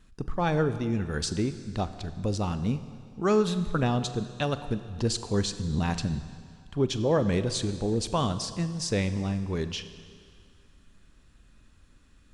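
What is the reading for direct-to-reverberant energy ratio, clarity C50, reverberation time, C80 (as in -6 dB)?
11.0 dB, 12.0 dB, 2.1 s, 13.0 dB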